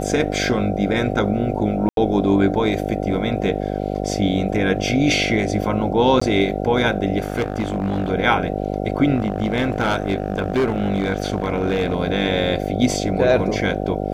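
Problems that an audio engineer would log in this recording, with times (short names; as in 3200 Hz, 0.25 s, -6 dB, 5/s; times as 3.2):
buzz 50 Hz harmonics 15 -24 dBFS
1.89–1.97 gap 82 ms
6.2–6.21 gap 15 ms
7.2–8.1 clipped -16.5 dBFS
9.15–11.96 clipped -14 dBFS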